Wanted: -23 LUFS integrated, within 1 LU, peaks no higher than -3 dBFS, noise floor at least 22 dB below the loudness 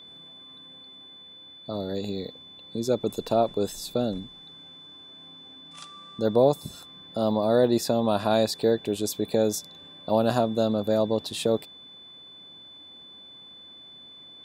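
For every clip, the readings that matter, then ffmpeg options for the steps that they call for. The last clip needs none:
steady tone 3.5 kHz; tone level -45 dBFS; loudness -26.0 LUFS; peak level -8.0 dBFS; loudness target -23.0 LUFS
-> -af "bandreject=f=3500:w=30"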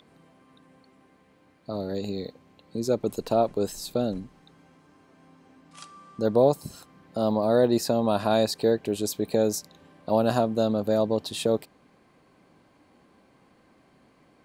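steady tone not found; loudness -26.0 LUFS; peak level -8.0 dBFS; loudness target -23.0 LUFS
-> -af "volume=1.41"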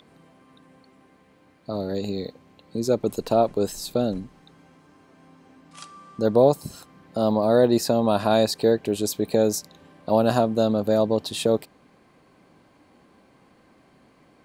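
loudness -23.0 LUFS; peak level -5.0 dBFS; noise floor -58 dBFS

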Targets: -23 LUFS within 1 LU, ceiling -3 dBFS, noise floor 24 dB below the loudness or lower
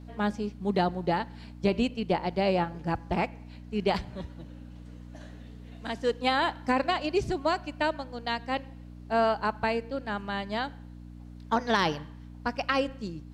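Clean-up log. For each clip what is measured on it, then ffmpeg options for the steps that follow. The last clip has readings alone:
hum 60 Hz; highest harmonic 300 Hz; hum level -43 dBFS; loudness -29.5 LUFS; peak level -12.0 dBFS; loudness target -23.0 LUFS
-> -af "bandreject=f=60:t=h:w=4,bandreject=f=120:t=h:w=4,bandreject=f=180:t=h:w=4,bandreject=f=240:t=h:w=4,bandreject=f=300:t=h:w=4"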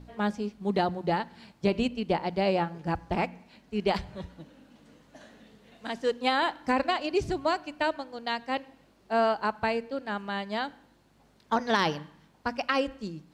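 hum not found; loudness -29.5 LUFS; peak level -12.0 dBFS; loudness target -23.0 LUFS
-> -af "volume=2.11"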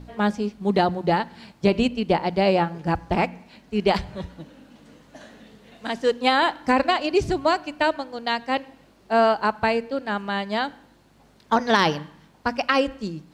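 loudness -23.0 LUFS; peak level -5.5 dBFS; noise floor -56 dBFS

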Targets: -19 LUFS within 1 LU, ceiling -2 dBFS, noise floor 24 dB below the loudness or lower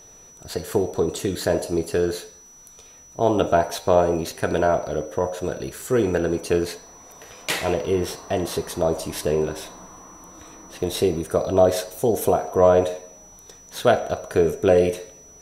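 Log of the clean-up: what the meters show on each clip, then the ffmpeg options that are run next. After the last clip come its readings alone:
steady tone 5.9 kHz; tone level -46 dBFS; loudness -22.5 LUFS; peak level -3.0 dBFS; loudness target -19.0 LUFS
-> -af "bandreject=f=5900:w=30"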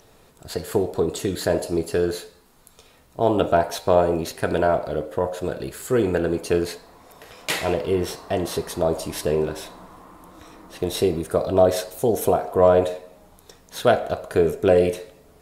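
steady tone not found; loudness -22.5 LUFS; peak level -3.0 dBFS; loudness target -19.0 LUFS
-> -af "volume=1.5,alimiter=limit=0.794:level=0:latency=1"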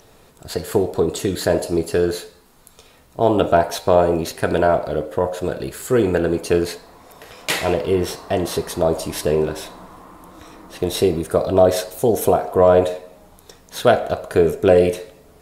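loudness -19.0 LUFS; peak level -2.0 dBFS; noise floor -50 dBFS

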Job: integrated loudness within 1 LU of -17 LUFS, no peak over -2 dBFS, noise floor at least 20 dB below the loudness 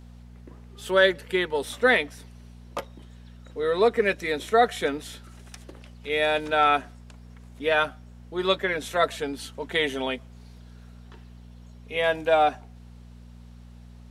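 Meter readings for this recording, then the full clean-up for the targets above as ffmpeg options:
hum 60 Hz; highest harmonic 240 Hz; hum level -44 dBFS; loudness -24.5 LUFS; peak level -6.5 dBFS; loudness target -17.0 LUFS
-> -af "bandreject=f=60:t=h:w=4,bandreject=f=120:t=h:w=4,bandreject=f=180:t=h:w=4,bandreject=f=240:t=h:w=4"
-af "volume=2.37,alimiter=limit=0.794:level=0:latency=1"

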